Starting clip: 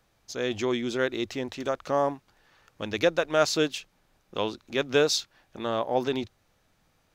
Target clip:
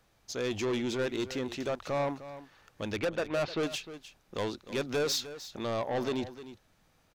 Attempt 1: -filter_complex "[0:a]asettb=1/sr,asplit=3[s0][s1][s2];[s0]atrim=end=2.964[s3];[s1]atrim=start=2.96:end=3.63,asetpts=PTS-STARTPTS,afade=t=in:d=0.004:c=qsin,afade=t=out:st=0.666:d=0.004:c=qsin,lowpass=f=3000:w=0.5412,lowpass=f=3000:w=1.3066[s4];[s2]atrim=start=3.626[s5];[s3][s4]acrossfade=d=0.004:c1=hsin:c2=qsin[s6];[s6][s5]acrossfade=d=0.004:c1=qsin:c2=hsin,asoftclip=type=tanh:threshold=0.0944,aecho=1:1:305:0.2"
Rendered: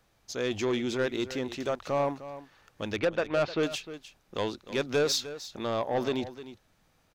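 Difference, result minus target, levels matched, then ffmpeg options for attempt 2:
saturation: distortion -5 dB
-filter_complex "[0:a]asettb=1/sr,asplit=3[s0][s1][s2];[s0]atrim=end=2.964[s3];[s1]atrim=start=2.96:end=3.63,asetpts=PTS-STARTPTS,afade=t=in:d=0.004:c=qsin,afade=t=out:st=0.666:d=0.004:c=qsin,lowpass=f=3000:w=0.5412,lowpass=f=3000:w=1.3066[s4];[s2]atrim=start=3.626[s5];[s3][s4]acrossfade=d=0.004:c1=hsin:c2=qsin[s6];[s6][s5]acrossfade=d=0.004:c1=qsin:c2=hsin,asoftclip=type=tanh:threshold=0.0473,aecho=1:1:305:0.2"

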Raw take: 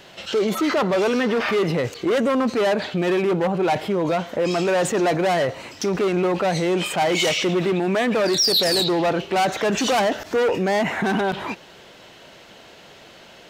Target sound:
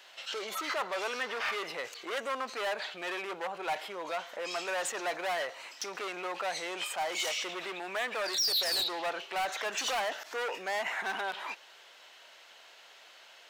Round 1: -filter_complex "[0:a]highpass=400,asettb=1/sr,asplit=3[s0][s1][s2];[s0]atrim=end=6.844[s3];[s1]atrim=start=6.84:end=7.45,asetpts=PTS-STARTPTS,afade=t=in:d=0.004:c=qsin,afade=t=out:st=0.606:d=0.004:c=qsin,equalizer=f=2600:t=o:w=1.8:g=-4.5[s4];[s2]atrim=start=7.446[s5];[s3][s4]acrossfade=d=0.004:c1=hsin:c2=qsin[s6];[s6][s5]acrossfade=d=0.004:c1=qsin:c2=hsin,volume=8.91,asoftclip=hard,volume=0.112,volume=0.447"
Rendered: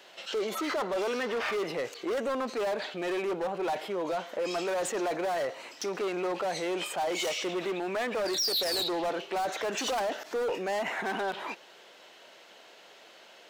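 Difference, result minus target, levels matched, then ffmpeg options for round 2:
500 Hz band +4.5 dB
-filter_complex "[0:a]highpass=880,asettb=1/sr,asplit=3[s0][s1][s2];[s0]atrim=end=6.844[s3];[s1]atrim=start=6.84:end=7.45,asetpts=PTS-STARTPTS,afade=t=in:d=0.004:c=qsin,afade=t=out:st=0.606:d=0.004:c=qsin,equalizer=f=2600:t=o:w=1.8:g=-4.5[s4];[s2]atrim=start=7.446[s5];[s3][s4]acrossfade=d=0.004:c1=hsin:c2=qsin[s6];[s6][s5]acrossfade=d=0.004:c1=qsin:c2=hsin,volume=8.91,asoftclip=hard,volume=0.112,volume=0.447"

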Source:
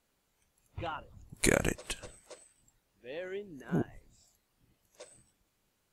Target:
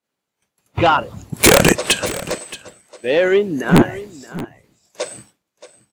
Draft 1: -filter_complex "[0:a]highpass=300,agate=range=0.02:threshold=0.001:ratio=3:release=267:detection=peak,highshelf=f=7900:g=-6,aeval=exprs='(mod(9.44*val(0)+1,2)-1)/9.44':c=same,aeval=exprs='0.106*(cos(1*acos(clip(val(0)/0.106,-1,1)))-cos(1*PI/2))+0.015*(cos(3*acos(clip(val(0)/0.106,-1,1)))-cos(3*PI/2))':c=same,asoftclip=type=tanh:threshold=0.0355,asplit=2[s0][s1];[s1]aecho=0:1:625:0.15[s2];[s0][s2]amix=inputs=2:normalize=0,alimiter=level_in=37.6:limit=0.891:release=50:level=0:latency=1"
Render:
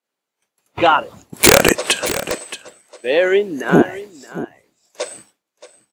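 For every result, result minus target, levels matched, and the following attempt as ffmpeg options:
125 Hz band -6.0 dB; saturation: distortion -6 dB
-filter_complex "[0:a]highpass=140,agate=range=0.02:threshold=0.001:ratio=3:release=267:detection=peak,highshelf=f=7900:g=-6,aeval=exprs='(mod(9.44*val(0)+1,2)-1)/9.44':c=same,aeval=exprs='0.106*(cos(1*acos(clip(val(0)/0.106,-1,1)))-cos(1*PI/2))+0.015*(cos(3*acos(clip(val(0)/0.106,-1,1)))-cos(3*PI/2))':c=same,asoftclip=type=tanh:threshold=0.0355,asplit=2[s0][s1];[s1]aecho=0:1:625:0.15[s2];[s0][s2]amix=inputs=2:normalize=0,alimiter=level_in=37.6:limit=0.891:release=50:level=0:latency=1"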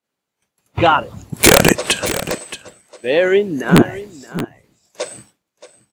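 saturation: distortion -5 dB
-filter_complex "[0:a]highpass=140,agate=range=0.02:threshold=0.001:ratio=3:release=267:detection=peak,highshelf=f=7900:g=-6,aeval=exprs='(mod(9.44*val(0)+1,2)-1)/9.44':c=same,aeval=exprs='0.106*(cos(1*acos(clip(val(0)/0.106,-1,1)))-cos(1*PI/2))+0.015*(cos(3*acos(clip(val(0)/0.106,-1,1)))-cos(3*PI/2))':c=same,asoftclip=type=tanh:threshold=0.015,asplit=2[s0][s1];[s1]aecho=0:1:625:0.15[s2];[s0][s2]amix=inputs=2:normalize=0,alimiter=level_in=37.6:limit=0.891:release=50:level=0:latency=1"

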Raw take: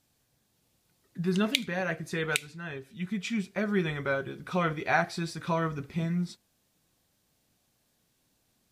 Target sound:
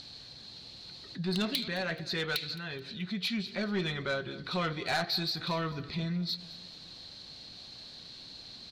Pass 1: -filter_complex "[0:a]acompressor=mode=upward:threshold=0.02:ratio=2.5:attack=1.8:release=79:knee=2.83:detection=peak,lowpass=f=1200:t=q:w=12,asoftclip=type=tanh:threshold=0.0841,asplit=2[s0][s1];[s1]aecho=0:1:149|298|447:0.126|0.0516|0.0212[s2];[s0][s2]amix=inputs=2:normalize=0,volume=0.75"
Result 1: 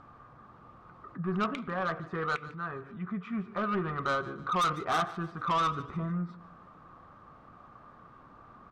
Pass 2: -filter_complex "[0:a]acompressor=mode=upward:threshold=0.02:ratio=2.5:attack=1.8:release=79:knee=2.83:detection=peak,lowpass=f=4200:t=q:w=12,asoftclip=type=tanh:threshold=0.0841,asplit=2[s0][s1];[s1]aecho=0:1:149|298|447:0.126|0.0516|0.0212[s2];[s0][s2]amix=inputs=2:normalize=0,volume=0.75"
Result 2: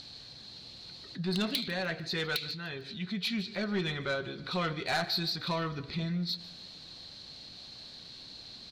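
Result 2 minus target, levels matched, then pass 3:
echo 66 ms early
-filter_complex "[0:a]acompressor=mode=upward:threshold=0.02:ratio=2.5:attack=1.8:release=79:knee=2.83:detection=peak,lowpass=f=4200:t=q:w=12,asoftclip=type=tanh:threshold=0.0841,asplit=2[s0][s1];[s1]aecho=0:1:215|430|645:0.126|0.0516|0.0212[s2];[s0][s2]amix=inputs=2:normalize=0,volume=0.75"

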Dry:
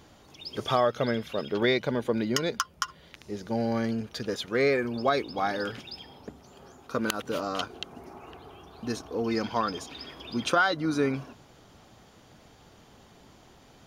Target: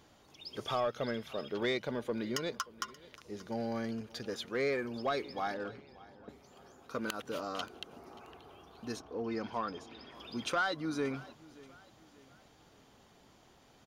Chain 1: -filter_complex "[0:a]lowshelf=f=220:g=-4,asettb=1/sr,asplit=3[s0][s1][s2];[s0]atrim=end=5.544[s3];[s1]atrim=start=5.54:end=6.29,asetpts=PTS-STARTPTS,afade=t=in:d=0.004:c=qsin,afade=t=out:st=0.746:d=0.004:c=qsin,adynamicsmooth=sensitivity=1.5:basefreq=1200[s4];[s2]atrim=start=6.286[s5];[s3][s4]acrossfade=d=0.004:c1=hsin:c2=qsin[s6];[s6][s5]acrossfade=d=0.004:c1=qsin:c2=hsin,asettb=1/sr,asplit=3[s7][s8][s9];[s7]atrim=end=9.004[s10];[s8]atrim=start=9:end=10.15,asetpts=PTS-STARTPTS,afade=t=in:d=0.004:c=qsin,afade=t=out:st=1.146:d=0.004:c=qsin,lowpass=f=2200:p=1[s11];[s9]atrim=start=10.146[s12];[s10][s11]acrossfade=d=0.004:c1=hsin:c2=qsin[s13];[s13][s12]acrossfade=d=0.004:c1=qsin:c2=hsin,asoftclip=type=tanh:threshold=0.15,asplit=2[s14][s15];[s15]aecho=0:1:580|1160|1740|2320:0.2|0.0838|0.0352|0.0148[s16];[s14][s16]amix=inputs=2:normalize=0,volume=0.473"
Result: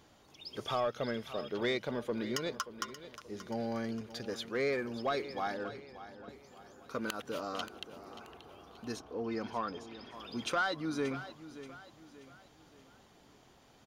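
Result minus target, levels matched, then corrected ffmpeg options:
echo-to-direct +7 dB
-filter_complex "[0:a]lowshelf=f=220:g=-4,asettb=1/sr,asplit=3[s0][s1][s2];[s0]atrim=end=5.544[s3];[s1]atrim=start=5.54:end=6.29,asetpts=PTS-STARTPTS,afade=t=in:d=0.004:c=qsin,afade=t=out:st=0.746:d=0.004:c=qsin,adynamicsmooth=sensitivity=1.5:basefreq=1200[s4];[s2]atrim=start=6.286[s5];[s3][s4]acrossfade=d=0.004:c1=hsin:c2=qsin[s6];[s6][s5]acrossfade=d=0.004:c1=qsin:c2=hsin,asettb=1/sr,asplit=3[s7][s8][s9];[s7]atrim=end=9.004[s10];[s8]atrim=start=9:end=10.15,asetpts=PTS-STARTPTS,afade=t=in:d=0.004:c=qsin,afade=t=out:st=1.146:d=0.004:c=qsin,lowpass=f=2200:p=1[s11];[s9]atrim=start=10.146[s12];[s10][s11]acrossfade=d=0.004:c1=hsin:c2=qsin[s13];[s13][s12]acrossfade=d=0.004:c1=qsin:c2=hsin,asoftclip=type=tanh:threshold=0.15,asplit=2[s14][s15];[s15]aecho=0:1:580|1160|1740:0.0891|0.0374|0.0157[s16];[s14][s16]amix=inputs=2:normalize=0,volume=0.473"

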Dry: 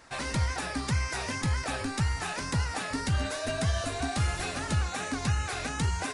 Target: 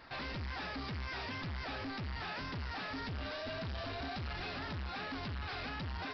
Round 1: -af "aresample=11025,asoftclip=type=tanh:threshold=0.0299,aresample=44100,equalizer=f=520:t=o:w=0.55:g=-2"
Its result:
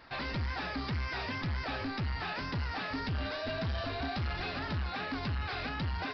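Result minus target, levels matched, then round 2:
saturation: distortion -5 dB
-af "aresample=11025,asoftclip=type=tanh:threshold=0.0119,aresample=44100,equalizer=f=520:t=o:w=0.55:g=-2"

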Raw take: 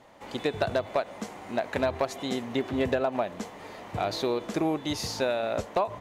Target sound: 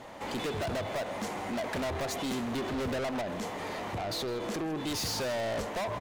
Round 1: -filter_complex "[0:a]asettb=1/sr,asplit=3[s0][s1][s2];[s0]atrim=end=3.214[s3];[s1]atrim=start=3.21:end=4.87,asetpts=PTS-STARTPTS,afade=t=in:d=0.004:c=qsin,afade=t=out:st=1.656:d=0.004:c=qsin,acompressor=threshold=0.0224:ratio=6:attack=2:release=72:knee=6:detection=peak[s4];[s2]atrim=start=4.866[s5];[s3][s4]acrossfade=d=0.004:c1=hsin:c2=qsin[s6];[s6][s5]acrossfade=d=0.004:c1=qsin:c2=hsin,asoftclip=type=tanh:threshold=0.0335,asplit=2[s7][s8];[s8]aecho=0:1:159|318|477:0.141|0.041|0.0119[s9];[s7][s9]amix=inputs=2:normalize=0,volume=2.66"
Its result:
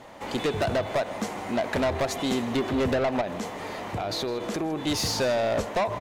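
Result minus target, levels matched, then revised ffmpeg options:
saturation: distortion -5 dB
-filter_complex "[0:a]asettb=1/sr,asplit=3[s0][s1][s2];[s0]atrim=end=3.214[s3];[s1]atrim=start=3.21:end=4.87,asetpts=PTS-STARTPTS,afade=t=in:d=0.004:c=qsin,afade=t=out:st=1.656:d=0.004:c=qsin,acompressor=threshold=0.0224:ratio=6:attack=2:release=72:knee=6:detection=peak[s4];[s2]atrim=start=4.866[s5];[s3][s4]acrossfade=d=0.004:c1=hsin:c2=qsin[s6];[s6][s5]acrossfade=d=0.004:c1=qsin:c2=hsin,asoftclip=type=tanh:threshold=0.0106,asplit=2[s7][s8];[s8]aecho=0:1:159|318|477:0.141|0.041|0.0119[s9];[s7][s9]amix=inputs=2:normalize=0,volume=2.66"

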